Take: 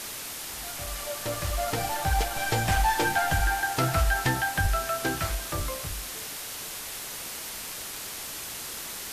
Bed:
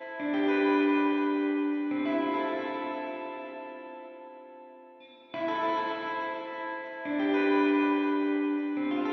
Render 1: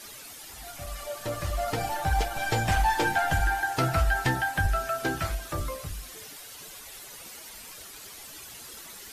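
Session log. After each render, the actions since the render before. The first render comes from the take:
broadband denoise 11 dB, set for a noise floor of −38 dBFS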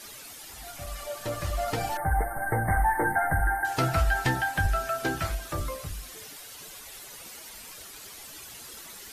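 0:01.97–0:03.65: linear-phase brick-wall band-stop 2,200–8,300 Hz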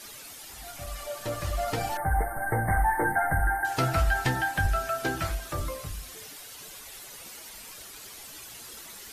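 hum removal 80.92 Hz, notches 26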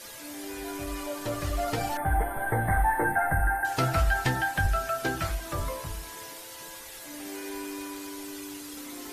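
mix in bed −13 dB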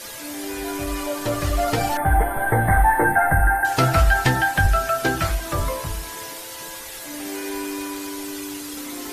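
level +8 dB

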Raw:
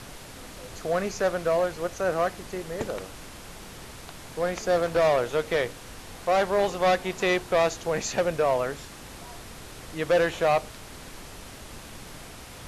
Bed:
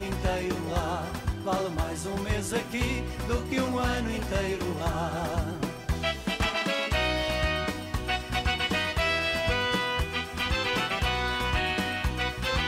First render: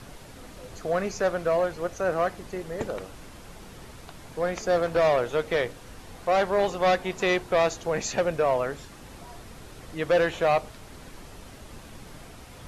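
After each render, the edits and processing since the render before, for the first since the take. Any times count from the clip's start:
broadband denoise 6 dB, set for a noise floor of −44 dBFS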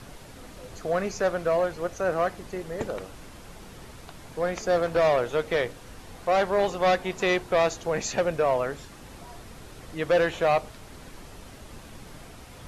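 no processing that can be heard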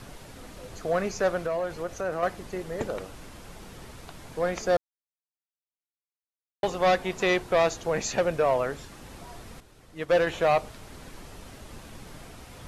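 0:01.46–0:02.23: downward compressor 2 to 1, threshold −29 dBFS
0:04.77–0:06.63: silence
0:09.60–0:10.27: expander for the loud parts, over −39 dBFS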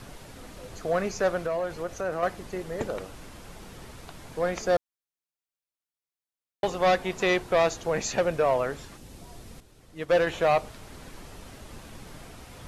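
0:08.96–0:10.08: parametric band 1,300 Hz −10.5 dB → −2 dB 2.3 octaves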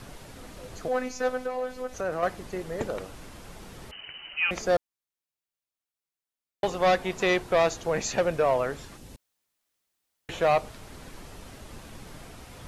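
0:00.88–0:01.94: phases set to zero 253 Hz
0:03.91–0:04.51: voice inversion scrambler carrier 3,000 Hz
0:09.16–0:10.29: fill with room tone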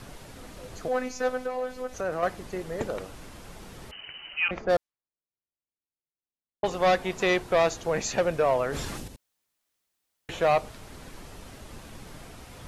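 0:04.48–0:06.71: low-pass that shuts in the quiet parts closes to 430 Hz, open at −21.5 dBFS
0:08.67–0:09.08: level that may fall only so fast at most 23 dB per second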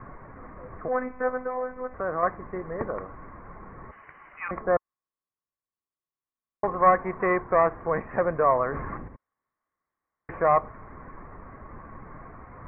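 Butterworth low-pass 2,100 Hz 72 dB per octave
parametric band 1,100 Hz +14 dB 0.21 octaves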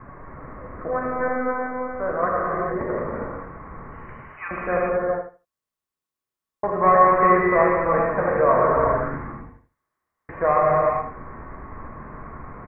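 repeating echo 78 ms, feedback 18%, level −9 dB
reverb whose tail is shaped and stops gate 460 ms flat, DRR −4 dB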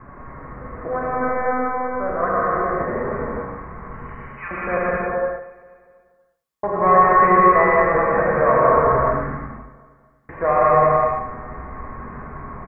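repeating echo 241 ms, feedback 51%, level −21 dB
reverb whose tail is shaped and stops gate 210 ms rising, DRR −1 dB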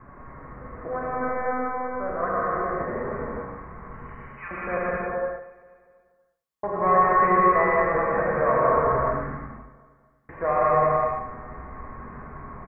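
level −5.5 dB

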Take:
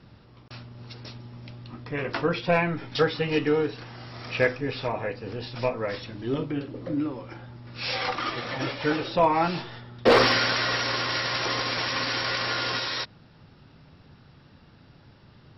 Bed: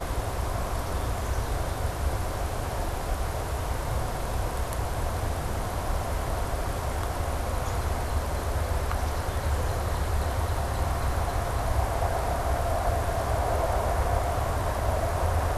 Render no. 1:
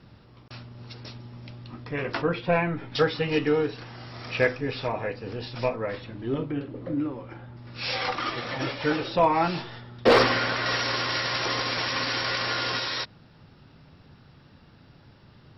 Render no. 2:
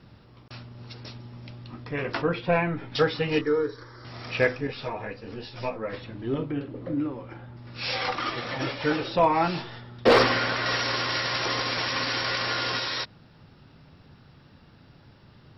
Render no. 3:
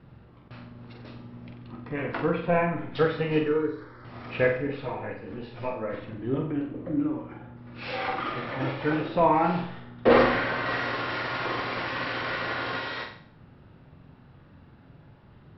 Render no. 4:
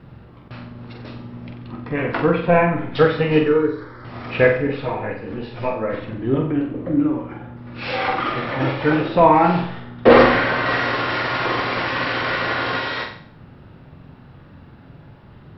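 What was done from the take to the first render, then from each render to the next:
0:02.22–0:02.94: high-frequency loss of the air 210 metres; 0:05.76–0:07.57: high-frequency loss of the air 220 metres; 0:10.23–0:10.66: low-pass filter 2,400 Hz 6 dB per octave
0:03.41–0:04.05: phaser with its sweep stopped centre 730 Hz, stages 6; 0:04.67–0:05.93: string-ensemble chorus
high-frequency loss of the air 400 metres; on a send: flutter between parallel walls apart 7.8 metres, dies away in 0.53 s
level +8.5 dB; brickwall limiter −1 dBFS, peak gain reduction 1 dB

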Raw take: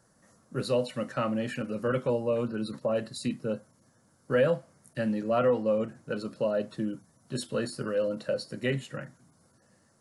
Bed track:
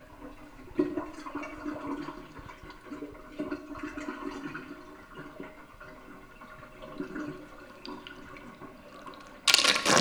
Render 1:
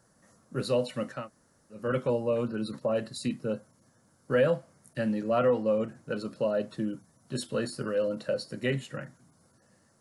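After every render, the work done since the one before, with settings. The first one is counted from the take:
0:01.18–0:01.81: fill with room tone, crossfade 0.24 s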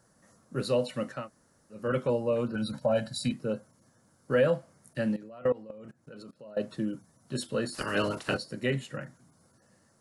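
0:02.55–0:03.32: comb filter 1.3 ms, depth 93%
0:05.16–0:06.57: output level in coarse steps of 23 dB
0:07.74–0:08.36: ceiling on every frequency bin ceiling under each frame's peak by 25 dB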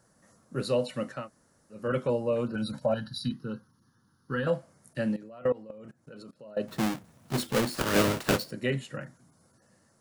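0:02.94–0:04.47: phaser with its sweep stopped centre 2,300 Hz, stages 6
0:06.68–0:08.51: each half-wave held at its own peak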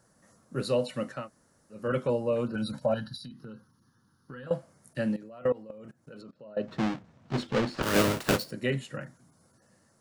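0:03.15–0:04.51: downward compressor 8 to 1, threshold −40 dBFS
0:06.21–0:07.83: high-frequency loss of the air 140 metres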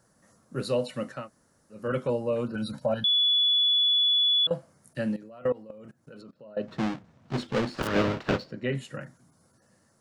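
0:03.04–0:04.47: beep over 3,420 Hz −19.5 dBFS
0:07.87–0:08.75: high-frequency loss of the air 190 metres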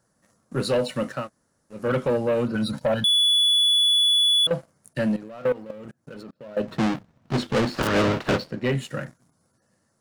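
leveller curve on the samples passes 2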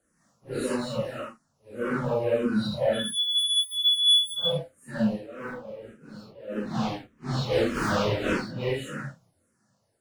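random phases in long frames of 200 ms
frequency shifter mixed with the dry sound −1.7 Hz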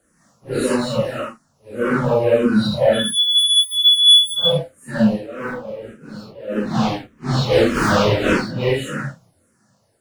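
level +9.5 dB

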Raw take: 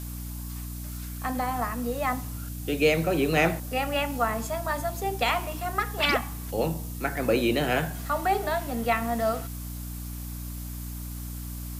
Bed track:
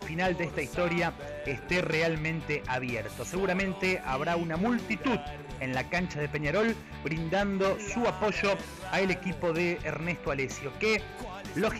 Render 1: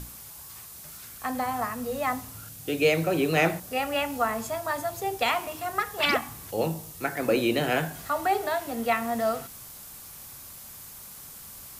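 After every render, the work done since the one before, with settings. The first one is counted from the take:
mains-hum notches 60/120/180/240/300 Hz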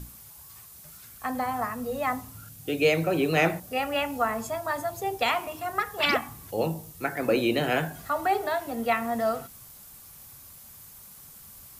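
broadband denoise 6 dB, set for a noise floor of −45 dBFS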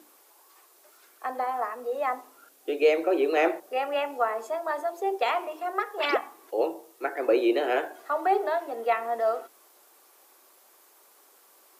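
elliptic high-pass filter 350 Hz, stop band 60 dB
spectral tilt −3 dB per octave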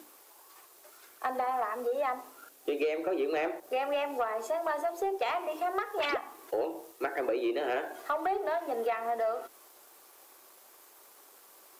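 downward compressor 6 to 1, threshold −31 dBFS, peak gain reduction 14.5 dB
leveller curve on the samples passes 1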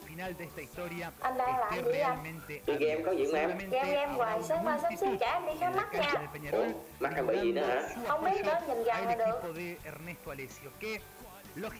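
mix in bed track −11.5 dB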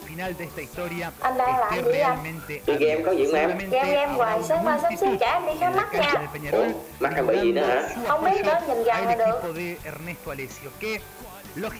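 level +9 dB

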